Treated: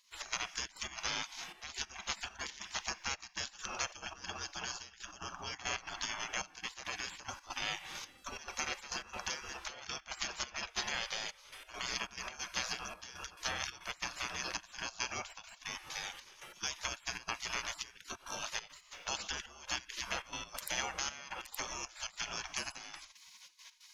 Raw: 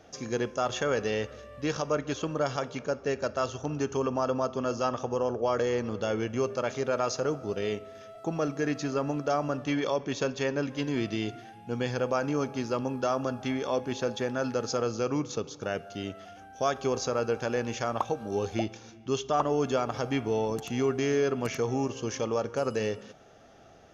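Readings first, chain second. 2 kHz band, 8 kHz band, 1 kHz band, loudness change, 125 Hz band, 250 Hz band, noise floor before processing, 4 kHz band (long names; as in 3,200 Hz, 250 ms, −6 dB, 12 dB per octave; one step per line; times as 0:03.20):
−1.5 dB, can't be measured, −10.5 dB, −9.5 dB, −21.0 dB, −24.5 dB, −50 dBFS, +1.5 dB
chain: downward compressor 6 to 1, threshold −35 dBFS, peak gain reduction 14 dB
gate pattern ".x.xxx.x.xxxxx." 138 BPM −12 dB
gate on every frequency bin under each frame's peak −25 dB weak
level +16.5 dB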